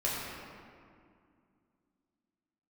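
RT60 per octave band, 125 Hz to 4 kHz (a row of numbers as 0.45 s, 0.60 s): 2.8 s, 3.3 s, 2.3 s, 2.2 s, 1.8 s, 1.3 s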